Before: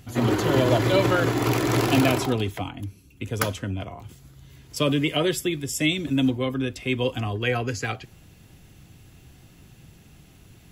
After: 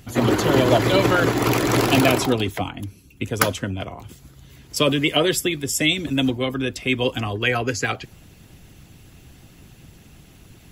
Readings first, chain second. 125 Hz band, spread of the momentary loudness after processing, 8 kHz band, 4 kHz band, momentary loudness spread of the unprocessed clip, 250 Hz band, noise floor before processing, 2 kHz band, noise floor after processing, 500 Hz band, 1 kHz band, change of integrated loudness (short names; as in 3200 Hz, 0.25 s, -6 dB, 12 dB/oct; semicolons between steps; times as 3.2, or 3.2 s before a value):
+1.0 dB, 14 LU, +6.0 dB, +5.5 dB, 14 LU, +2.5 dB, -52 dBFS, +5.0 dB, -49 dBFS, +3.5 dB, +4.5 dB, +3.5 dB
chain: harmonic-percussive split percussive +7 dB